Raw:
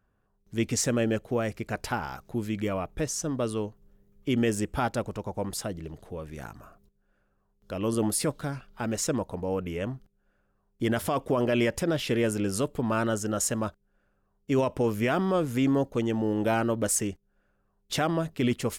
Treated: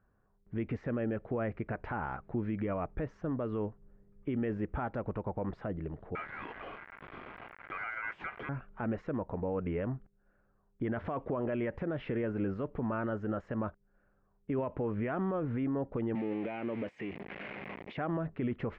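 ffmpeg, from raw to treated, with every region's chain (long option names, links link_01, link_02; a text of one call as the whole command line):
ffmpeg -i in.wav -filter_complex "[0:a]asettb=1/sr,asplit=3[link_01][link_02][link_03];[link_01]atrim=end=6.154[link_04];[link_02]atrim=start=6.15:end=8.49,asetpts=PTS-STARTPTS,afade=type=in:duration=0.004:curve=qsin,afade=type=out:start_time=2.336:duration=0.004:curve=qsin,aeval=exprs='val(0)+0.5*0.0266*sgn(val(0))':channel_layout=same,highpass=frequency=380:poles=1,aeval=exprs='val(0)*sin(2*PI*1800*n/s)':channel_layout=same[link_05];[link_03]atrim=start=8.486[link_06];[link_04][link_05]acrossfade=duration=0.004:curve1=hsin:curve2=qsin[link_07];[link_07][link_06]acrossfade=duration=0.004:curve1=qsin:curve2=hsin,asettb=1/sr,asplit=3[link_08][link_09][link_10];[link_08]atrim=end=16.154[link_11];[link_09]atrim=start=16.15:end=17.97,asetpts=PTS-STARTPTS,afade=type=in:duration=0.004:curve=qsin,afade=type=out:start_time=1.816:duration=0.004:curve=qsin,aeval=exprs='val(0)+0.5*0.0237*sgn(val(0))':channel_layout=same,highpass=170,highshelf=frequency=1800:width_type=q:width=3:gain=7[link_12];[link_10]atrim=start=17.966[link_13];[link_11][link_12]acrossfade=duration=0.004:curve1=hsin:curve2=qsin[link_14];[link_14][link_13]acrossfade=duration=0.004:curve1=qsin:curve2=hsin,alimiter=level_in=1.5dB:limit=-24dB:level=0:latency=1:release=82,volume=-1.5dB,lowpass=frequency=2000:width=0.5412,lowpass=frequency=2000:width=1.3066" out.wav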